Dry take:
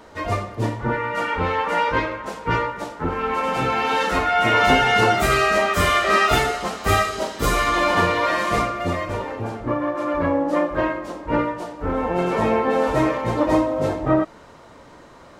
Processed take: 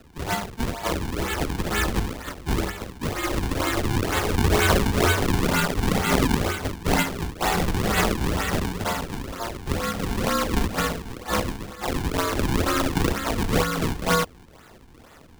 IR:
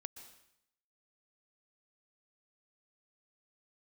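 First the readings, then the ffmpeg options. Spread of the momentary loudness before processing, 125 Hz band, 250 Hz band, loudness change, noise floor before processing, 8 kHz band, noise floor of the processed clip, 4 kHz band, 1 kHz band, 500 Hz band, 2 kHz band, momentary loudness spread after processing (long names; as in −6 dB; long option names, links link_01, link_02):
10 LU, +2.0 dB, −1.5 dB, −4.0 dB, −46 dBFS, +3.5 dB, −49 dBFS, −1.5 dB, −7.5 dB, −6.0 dB, −5.0 dB, 9 LU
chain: -af "aeval=exprs='val(0)*sin(2*PI*900*n/s)':channel_layout=same,acrusher=samples=37:mix=1:aa=0.000001:lfo=1:lforange=59.2:lforate=2.1,afreqshift=-100"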